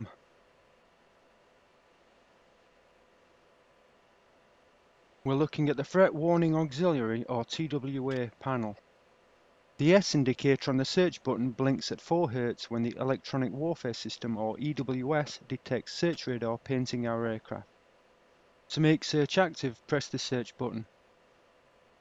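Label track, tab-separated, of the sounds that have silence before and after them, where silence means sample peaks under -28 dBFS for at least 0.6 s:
5.260000	8.700000	sound
9.800000	17.560000	sound
18.740000	20.780000	sound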